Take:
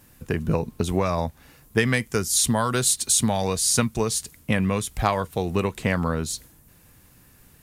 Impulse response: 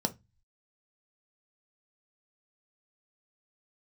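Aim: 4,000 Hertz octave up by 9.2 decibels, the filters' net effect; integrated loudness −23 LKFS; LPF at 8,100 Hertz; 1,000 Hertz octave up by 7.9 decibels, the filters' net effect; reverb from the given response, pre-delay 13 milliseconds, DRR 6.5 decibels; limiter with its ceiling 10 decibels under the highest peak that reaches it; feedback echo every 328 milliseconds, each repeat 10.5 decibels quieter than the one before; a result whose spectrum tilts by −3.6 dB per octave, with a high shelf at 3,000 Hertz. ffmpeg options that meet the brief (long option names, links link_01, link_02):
-filter_complex "[0:a]lowpass=8100,equalizer=frequency=1000:width_type=o:gain=8.5,highshelf=frequency=3000:gain=7,equalizer=frequency=4000:width_type=o:gain=5.5,alimiter=limit=-8.5dB:level=0:latency=1,aecho=1:1:328|656|984:0.299|0.0896|0.0269,asplit=2[link_01][link_02];[1:a]atrim=start_sample=2205,adelay=13[link_03];[link_02][link_03]afir=irnorm=-1:irlink=0,volume=-12dB[link_04];[link_01][link_04]amix=inputs=2:normalize=0,volume=-3.5dB"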